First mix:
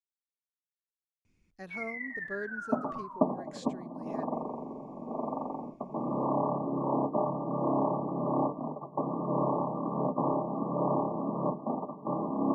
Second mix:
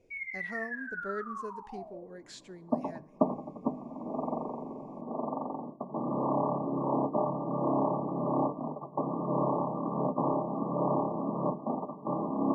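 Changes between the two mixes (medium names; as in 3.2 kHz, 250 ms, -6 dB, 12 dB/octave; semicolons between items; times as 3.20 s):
speech: entry -1.25 s; first sound: entry -1.60 s; reverb: on, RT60 1.0 s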